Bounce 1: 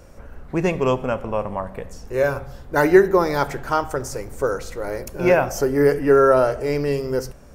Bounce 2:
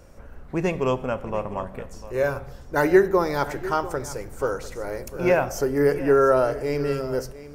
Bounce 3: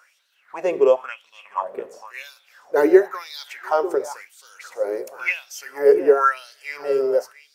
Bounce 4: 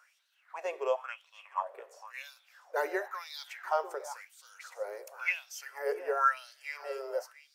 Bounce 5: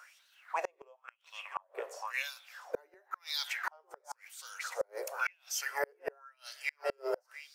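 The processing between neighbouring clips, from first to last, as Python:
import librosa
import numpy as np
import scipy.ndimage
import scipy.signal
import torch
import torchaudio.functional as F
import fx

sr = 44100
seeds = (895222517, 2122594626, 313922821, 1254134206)

y1 = x + 10.0 ** (-16.0 / 20.0) * np.pad(x, (int(698 * sr / 1000.0), 0))[:len(x)]
y1 = F.gain(torch.from_numpy(y1), -3.5).numpy()
y2 = fx.filter_lfo_highpass(y1, sr, shape='sine', hz=0.96, low_hz=370.0, high_hz=3900.0, q=6.0)
y2 = F.gain(torch.from_numpy(y2), -3.0).numpy()
y3 = scipy.signal.sosfilt(scipy.signal.butter(4, 600.0, 'highpass', fs=sr, output='sos'), y2)
y3 = F.gain(torch.from_numpy(y3), -8.0).numpy()
y4 = fx.gate_flip(y3, sr, shuts_db=-29.0, range_db=-38)
y4 = F.gain(torch.from_numpy(y4), 8.5).numpy()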